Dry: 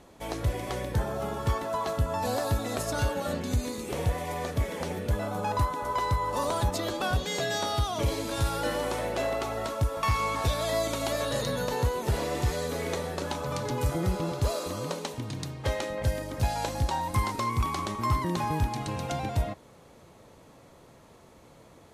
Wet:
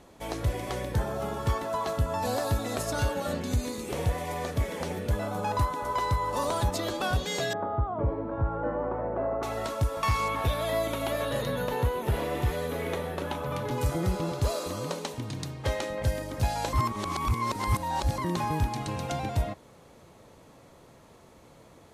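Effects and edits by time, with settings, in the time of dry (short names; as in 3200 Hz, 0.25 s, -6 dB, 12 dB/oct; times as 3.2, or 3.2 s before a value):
7.53–9.43 LPF 1300 Hz 24 dB/oct
10.28–13.71 band shelf 6100 Hz -9.5 dB 1.3 oct
16.73–18.18 reverse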